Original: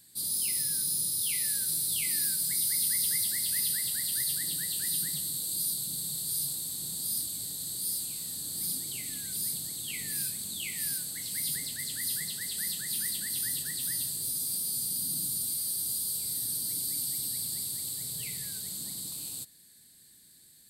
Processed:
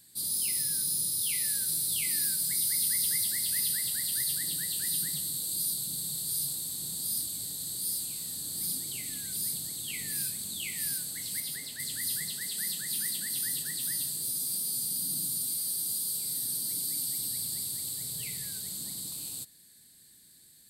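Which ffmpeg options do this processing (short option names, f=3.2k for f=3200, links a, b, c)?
-filter_complex "[0:a]asettb=1/sr,asplit=3[a][b][c];[a]atrim=end=11.404[d];[b]atrim=start=11.4:end=11.8,asetpts=PTS-STARTPTS,afade=t=in:d=0.004:c=qsin,afade=t=out:st=0.396:d=0.004:c=qsin,bass=f=250:g=-7,treble=f=4k:g=-5[e];[c]atrim=start=11.796[f];[d][e]acrossfade=d=0.004:c1=hsin:c2=qsin[g];[g][f]acrossfade=d=0.004:c1=qsin:c2=hsin,asettb=1/sr,asplit=3[h][i][j];[h]atrim=end=12.344[k];[i]atrim=start=12.34:end=17.21,asetpts=PTS-STARTPTS,afade=t=in:d=0.004:c=qsin,afade=t=out:st=4.866:d=0.004:c=qsin,highpass=f=120:w=0.5412,highpass=f=120:w=1.3066[l];[j]atrim=start=17.206[m];[k][l]acrossfade=d=0.004:c1=hsin:c2=qsin[n];[n][m]acrossfade=d=0.004:c1=qsin:c2=hsin"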